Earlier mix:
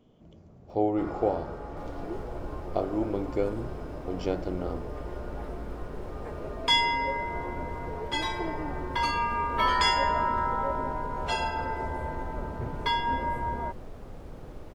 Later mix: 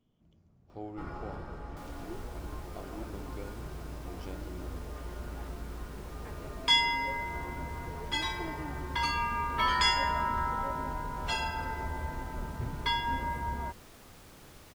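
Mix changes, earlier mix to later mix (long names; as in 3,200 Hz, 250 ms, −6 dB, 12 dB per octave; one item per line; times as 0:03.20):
speech −10.0 dB
second sound: add spectral tilt +3.5 dB per octave
master: add parametric band 520 Hz −9 dB 1.7 octaves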